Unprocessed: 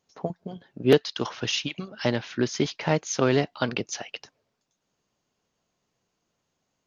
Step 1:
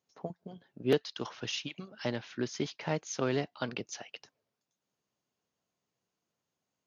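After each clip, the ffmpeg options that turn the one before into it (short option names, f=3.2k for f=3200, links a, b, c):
-af "highpass=79,volume=-9dB"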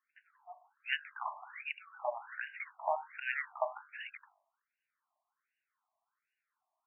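-af "bandreject=f=48.71:t=h:w=4,bandreject=f=97.42:t=h:w=4,bandreject=f=146.13:t=h:w=4,bandreject=f=194.84:t=h:w=4,bandreject=f=243.55:t=h:w=4,bandreject=f=292.26:t=h:w=4,bandreject=f=340.97:t=h:w=4,bandreject=f=389.68:t=h:w=4,bandreject=f=438.39:t=h:w=4,bandreject=f=487.1:t=h:w=4,bandreject=f=535.81:t=h:w=4,bandreject=f=584.52:t=h:w=4,bandreject=f=633.23:t=h:w=4,bandreject=f=681.94:t=h:w=4,bandreject=f=730.65:t=h:w=4,bandreject=f=779.36:t=h:w=4,bandreject=f=828.07:t=h:w=4,bandreject=f=876.78:t=h:w=4,bandreject=f=925.49:t=h:w=4,bandreject=f=974.2:t=h:w=4,bandreject=f=1.02291k:t=h:w=4,bandreject=f=1.07162k:t=h:w=4,bandreject=f=1.12033k:t=h:w=4,bandreject=f=1.16904k:t=h:w=4,bandreject=f=1.21775k:t=h:w=4,bandreject=f=1.26646k:t=h:w=4,bandreject=f=1.31517k:t=h:w=4,bandreject=f=1.36388k:t=h:w=4,bandreject=f=1.41259k:t=h:w=4,bandreject=f=1.4613k:t=h:w=4,bandreject=f=1.51001k:t=h:w=4,bandreject=f=1.55872k:t=h:w=4,bandreject=f=1.60743k:t=h:w=4,bandreject=f=1.65614k:t=h:w=4,afftfilt=real='re*between(b*sr/1024,840*pow(2100/840,0.5+0.5*sin(2*PI*1.3*pts/sr))/1.41,840*pow(2100/840,0.5+0.5*sin(2*PI*1.3*pts/sr))*1.41)':imag='im*between(b*sr/1024,840*pow(2100/840,0.5+0.5*sin(2*PI*1.3*pts/sr))/1.41,840*pow(2100/840,0.5+0.5*sin(2*PI*1.3*pts/sr))*1.41)':win_size=1024:overlap=0.75,volume=8dB"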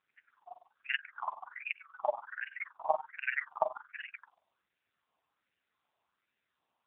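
-af "tremolo=f=21:d=0.889,volume=7.5dB" -ar 8000 -c:a libopencore_amrnb -b:a 6700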